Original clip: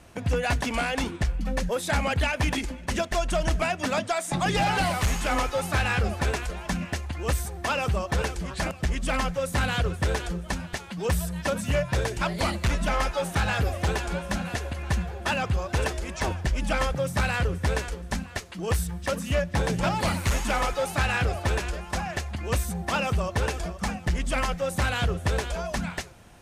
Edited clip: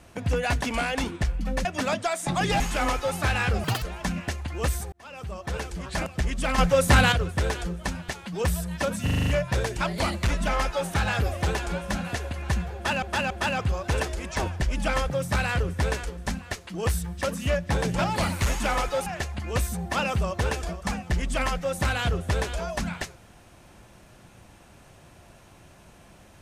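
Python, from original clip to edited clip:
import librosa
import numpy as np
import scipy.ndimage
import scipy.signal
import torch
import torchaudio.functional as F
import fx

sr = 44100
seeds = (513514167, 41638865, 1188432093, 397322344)

y = fx.edit(x, sr, fx.cut(start_s=1.65, length_s=2.05),
    fx.cut(start_s=4.65, length_s=0.45),
    fx.speed_span(start_s=6.14, length_s=0.33, speed=1.8),
    fx.fade_in_span(start_s=7.57, length_s=1.1),
    fx.clip_gain(start_s=9.23, length_s=0.54, db=8.0),
    fx.stutter(start_s=11.68, slice_s=0.04, count=7),
    fx.repeat(start_s=15.15, length_s=0.28, count=3),
    fx.cut(start_s=20.91, length_s=1.12), tone=tone)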